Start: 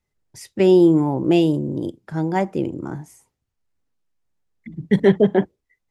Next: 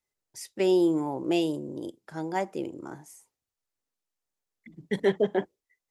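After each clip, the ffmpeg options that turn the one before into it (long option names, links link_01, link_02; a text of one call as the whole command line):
ffmpeg -i in.wav -af "bass=frequency=250:gain=-12,treble=frequency=4000:gain=6,volume=-6.5dB" out.wav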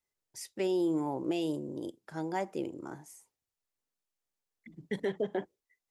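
ffmpeg -i in.wav -af "alimiter=limit=-20dB:level=0:latency=1:release=123,volume=-2.5dB" out.wav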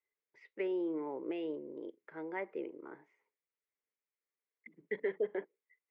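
ffmpeg -i in.wav -af "highpass=340,equalizer=frequency=440:width_type=q:width=4:gain=8,equalizer=frequency=740:width_type=q:width=4:gain=-8,equalizer=frequency=2100:width_type=q:width=4:gain=9,lowpass=frequency=2500:width=0.5412,lowpass=frequency=2500:width=1.3066,volume=-5dB" out.wav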